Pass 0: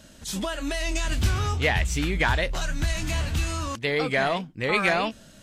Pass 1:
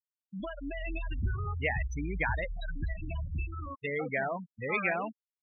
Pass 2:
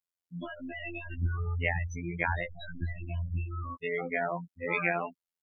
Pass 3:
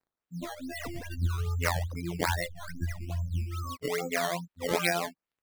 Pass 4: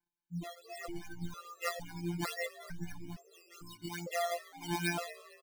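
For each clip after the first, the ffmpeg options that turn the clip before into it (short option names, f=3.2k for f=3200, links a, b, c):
-af "afftfilt=real='re*gte(hypot(re,im),0.126)':imag='im*gte(hypot(re,im),0.126)':win_size=1024:overlap=0.75,afftdn=nr=13:nf=-37,highshelf=f=4.2k:g=9,volume=-8dB"
-af "afftfilt=real='hypot(re,im)*cos(PI*b)':imag='0':win_size=2048:overlap=0.75,volume=4dB"
-af "acrusher=samples=12:mix=1:aa=0.000001:lfo=1:lforange=12:lforate=2.4,volume=1.5dB"
-filter_complex "[0:a]afftfilt=real='hypot(re,im)*cos(PI*b)':imag='0':win_size=1024:overlap=0.75,asplit=4[a][b][c][d];[b]adelay=228,afreqshift=110,volume=-17dB[e];[c]adelay=456,afreqshift=220,volume=-25.4dB[f];[d]adelay=684,afreqshift=330,volume=-33.8dB[g];[a][e][f][g]amix=inputs=4:normalize=0,afftfilt=real='re*gt(sin(2*PI*1.1*pts/sr)*(1-2*mod(floor(b*sr/1024/350),2)),0)':imag='im*gt(sin(2*PI*1.1*pts/sr)*(1-2*mod(floor(b*sr/1024/350),2)),0)':win_size=1024:overlap=0.75"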